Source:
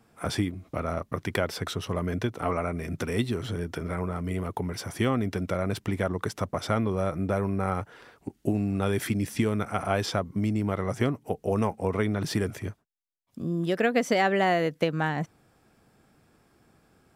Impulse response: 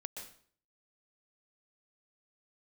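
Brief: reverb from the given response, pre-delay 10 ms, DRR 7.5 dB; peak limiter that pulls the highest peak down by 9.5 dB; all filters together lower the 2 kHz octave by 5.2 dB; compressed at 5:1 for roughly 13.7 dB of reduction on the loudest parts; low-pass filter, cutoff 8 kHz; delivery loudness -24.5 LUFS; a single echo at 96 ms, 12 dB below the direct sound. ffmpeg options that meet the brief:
-filter_complex "[0:a]lowpass=8000,equalizer=f=2000:t=o:g=-6.5,acompressor=threshold=0.0141:ratio=5,alimiter=level_in=2.11:limit=0.0631:level=0:latency=1,volume=0.473,aecho=1:1:96:0.251,asplit=2[s0][s1];[1:a]atrim=start_sample=2205,adelay=10[s2];[s1][s2]afir=irnorm=-1:irlink=0,volume=0.562[s3];[s0][s3]amix=inputs=2:normalize=0,volume=6.68"

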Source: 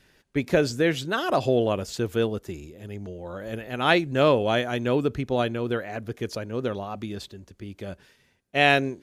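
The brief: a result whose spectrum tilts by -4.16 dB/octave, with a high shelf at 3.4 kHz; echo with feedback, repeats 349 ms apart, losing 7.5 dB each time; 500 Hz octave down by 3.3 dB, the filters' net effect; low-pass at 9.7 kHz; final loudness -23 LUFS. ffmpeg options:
-af "lowpass=9700,equalizer=f=500:t=o:g=-4,highshelf=f=3400:g=-3,aecho=1:1:349|698|1047|1396|1745:0.422|0.177|0.0744|0.0312|0.0131,volume=1.5"

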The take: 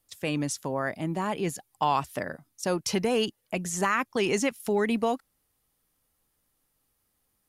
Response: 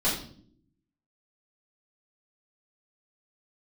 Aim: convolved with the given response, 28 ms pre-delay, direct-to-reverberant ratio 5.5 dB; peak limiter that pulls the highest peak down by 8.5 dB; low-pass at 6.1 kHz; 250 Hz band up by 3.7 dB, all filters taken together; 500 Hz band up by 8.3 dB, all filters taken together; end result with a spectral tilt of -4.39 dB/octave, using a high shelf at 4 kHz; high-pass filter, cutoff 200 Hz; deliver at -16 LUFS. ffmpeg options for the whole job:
-filter_complex "[0:a]highpass=200,lowpass=6100,equalizer=f=250:t=o:g=4,equalizer=f=500:t=o:g=9,highshelf=f=4000:g=8.5,alimiter=limit=0.158:level=0:latency=1,asplit=2[s0][s1];[1:a]atrim=start_sample=2205,adelay=28[s2];[s1][s2]afir=irnorm=-1:irlink=0,volume=0.15[s3];[s0][s3]amix=inputs=2:normalize=0,volume=2.99"

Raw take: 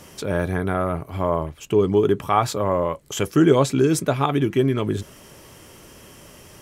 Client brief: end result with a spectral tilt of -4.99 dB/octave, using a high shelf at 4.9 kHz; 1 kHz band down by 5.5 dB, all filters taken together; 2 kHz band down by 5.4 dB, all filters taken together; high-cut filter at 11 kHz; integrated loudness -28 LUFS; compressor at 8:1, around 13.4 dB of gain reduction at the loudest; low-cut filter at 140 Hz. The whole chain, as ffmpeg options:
-af "highpass=140,lowpass=11000,equalizer=f=1000:t=o:g=-6,equalizer=f=2000:t=o:g=-5.5,highshelf=f=4900:g=3.5,acompressor=threshold=0.0501:ratio=8,volume=1.5"

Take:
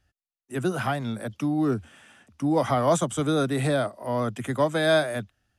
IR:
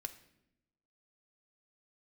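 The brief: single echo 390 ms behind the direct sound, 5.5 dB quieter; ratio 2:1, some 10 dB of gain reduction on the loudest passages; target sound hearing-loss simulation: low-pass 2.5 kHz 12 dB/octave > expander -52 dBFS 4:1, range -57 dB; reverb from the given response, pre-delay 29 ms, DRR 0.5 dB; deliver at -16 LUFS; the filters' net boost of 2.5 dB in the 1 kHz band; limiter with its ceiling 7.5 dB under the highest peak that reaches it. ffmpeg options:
-filter_complex "[0:a]equalizer=f=1000:t=o:g=3.5,acompressor=threshold=0.02:ratio=2,alimiter=level_in=1.19:limit=0.0631:level=0:latency=1,volume=0.841,aecho=1:1:390:0.531,asplit=2[s0][s1];[1:a]atrim=start_sample=2205,adelay=29[s2];[s1][s2]afir=irnorm=-1:irlink=0,volume=1.33[s3];[s0][s3]amix=inputs=2:normalize=0,lowpass=2500,agate=range=0.00141:threshold=0.00251:ratio=4,volume=5.96"

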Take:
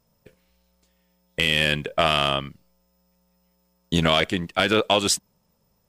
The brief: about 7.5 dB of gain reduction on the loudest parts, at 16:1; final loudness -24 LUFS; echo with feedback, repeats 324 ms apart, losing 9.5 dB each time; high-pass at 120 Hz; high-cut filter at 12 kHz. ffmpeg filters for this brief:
-af "highpass=120,lowpass=12000,acompressor=threshold=0.0794:ratio=16,aecho=1:1:324|648|972|1296:0.335|0.111|0.0365|0.012,volume=1.68"

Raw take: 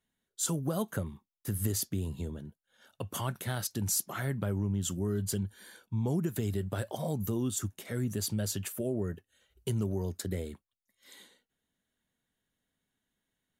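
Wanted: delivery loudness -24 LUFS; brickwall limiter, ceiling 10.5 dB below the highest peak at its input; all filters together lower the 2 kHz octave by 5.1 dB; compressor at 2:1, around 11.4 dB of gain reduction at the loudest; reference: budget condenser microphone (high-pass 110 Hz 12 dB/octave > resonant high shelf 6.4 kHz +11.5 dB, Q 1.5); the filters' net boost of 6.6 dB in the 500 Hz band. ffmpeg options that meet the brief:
-af "equalizer=f=500:t=o:g=9,equalizer=f=2000:t=o:g=-7,acompressor=threshold=0.00501:ratio=2,alimiter=level_in=4.22:limit=0.0631:level=0:latency=1,volume=0.237,highpass=110,highshelf=f=6400:t=q:w=1.5:g=11.5,volume=7.08"

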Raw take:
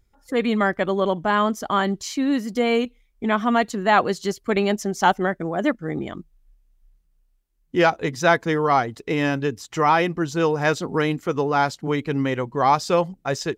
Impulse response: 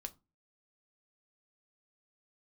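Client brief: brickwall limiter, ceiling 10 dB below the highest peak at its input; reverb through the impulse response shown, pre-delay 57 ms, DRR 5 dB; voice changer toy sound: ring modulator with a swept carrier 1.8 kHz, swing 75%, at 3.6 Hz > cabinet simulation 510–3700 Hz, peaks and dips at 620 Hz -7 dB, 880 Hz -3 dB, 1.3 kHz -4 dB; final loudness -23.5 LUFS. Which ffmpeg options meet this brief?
-filter_complex "[0:a]alimiter=limit=0.188:level=0:latency=1,asplit=2[s0][s1];[1:a]atrim=start_sample=2205,adelay=57[s2];[s1][s2]afir=irnorm=-1:irlink=0,volume=0.891[s3];[s0][s3]amix=inputs=2:normalize=0,aeval=exprs='val(0)*sin(2*PI*1800*n/s+1800*0.75/3.6*sin(2*PI*3.6*n/s))':c=same,highpass=510,equalizer=f=620:t=q:w=4:g=-7,equalizer=f=880:t=q:w=4:g=-3,equalizer=f=1300:t=q:w=4:g=-4,lowpass=f=3700:w=0.5412,lowpass=f=3700:w=1.3066,volume=1.5"

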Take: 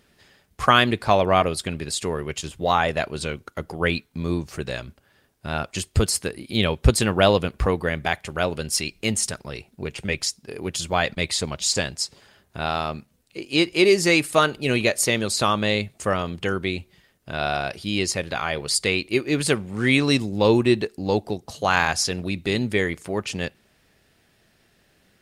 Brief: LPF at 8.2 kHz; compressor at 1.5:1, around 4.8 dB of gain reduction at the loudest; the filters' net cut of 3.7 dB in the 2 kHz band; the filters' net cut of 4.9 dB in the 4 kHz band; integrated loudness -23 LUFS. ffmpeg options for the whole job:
-af "lowpass=8200,equalizer=f=2000:t=o:g=-3.5,equalizer=f=4000:t=o:g=-5,acompressor=threshold=0.0562:ratio=1.5,volume=1.68"

